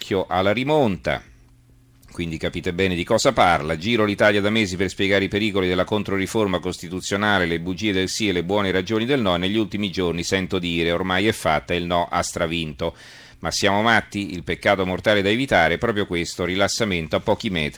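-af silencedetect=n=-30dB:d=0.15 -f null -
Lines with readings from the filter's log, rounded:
silence_start: 1.19
silence_end: 2.15 | silence_duration: 0.96
silence_start: 12.90
silence_end: 13.43 | silence_duration: 0.53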